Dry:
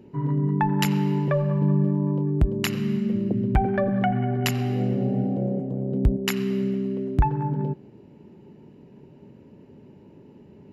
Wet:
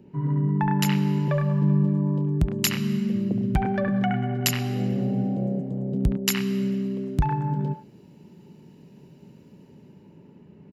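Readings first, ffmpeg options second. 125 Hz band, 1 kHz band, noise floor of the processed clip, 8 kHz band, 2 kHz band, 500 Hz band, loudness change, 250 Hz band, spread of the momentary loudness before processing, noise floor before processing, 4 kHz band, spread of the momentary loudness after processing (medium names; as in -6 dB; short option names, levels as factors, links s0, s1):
0.0 dB, -2.0 dB, -52 dBFS, +7.0 dB, +0.5 dB, -4.0 dB, -0.5 dB, 0.0 dB, 5 LU, -50 dBFS, +3.0 dB, 5 LU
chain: -filter_complex "[0:a]equalizer=f=170:w=2.6:g=7.5,acrossover=split=730|3700[s0][s1][s2];[s1]aecho=1:1:69.97|102:1|0.631[s3];[s2]dynaudnorm=f=120:g=17:m=5.96[s4];[s0][s3][s4]amix=inputs=3:normalize=0,volume=0.631"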